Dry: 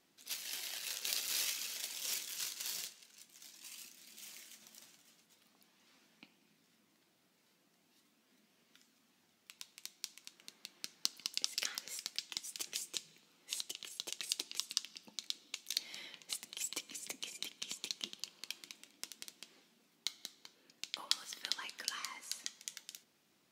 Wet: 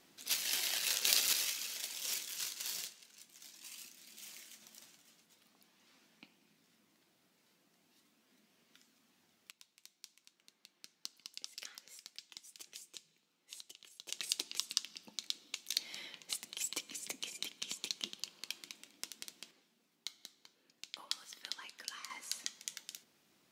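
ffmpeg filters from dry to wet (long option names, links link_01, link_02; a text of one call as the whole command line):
ffmpeg -i in.wav -af "asetnsamples=nb_out_samples=441:pad=0,asendcmd='1.33 volume volume 0.5dB;9.51 volume volume -10dB;14.09 volume volume 1.5dB;19.51 volume volume -5dB;22.1 volume volume 2dB',volume=7.5dB" out.wav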